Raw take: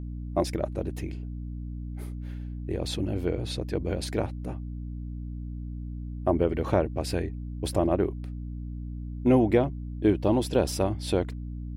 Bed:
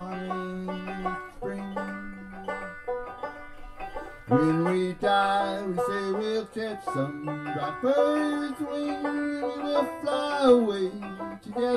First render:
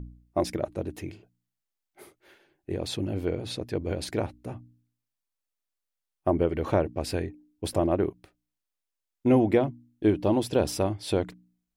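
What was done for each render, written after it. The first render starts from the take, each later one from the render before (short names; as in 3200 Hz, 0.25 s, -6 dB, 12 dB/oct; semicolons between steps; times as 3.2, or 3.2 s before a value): de-hum 60 Hz, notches 5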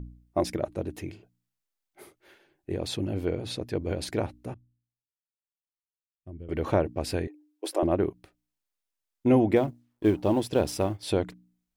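4.54–6.49 passive tone stack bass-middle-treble 10-0-1; 7.27–7.83 elliptic high-pass 310 Hz; 9.56–11.03 G.711 law mismatch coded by A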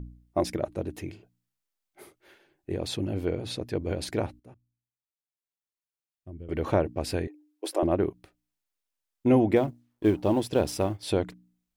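4.4–6.32 fade in, from -15.5 dB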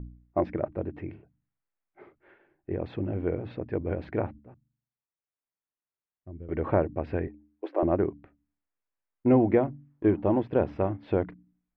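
LPF 2100 Hz 24 dB/oct; de-hum 72.13 Hz, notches 4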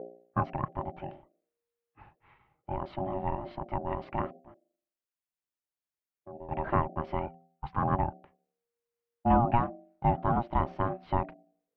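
ring modulator 470 Hz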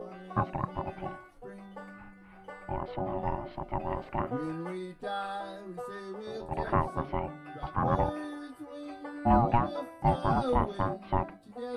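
add bed -12.5 dB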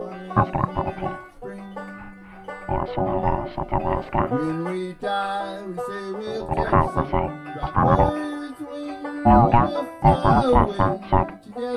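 gain +10.5 dB; limiter -3 dBFS, peak gain reduction 2.5 dB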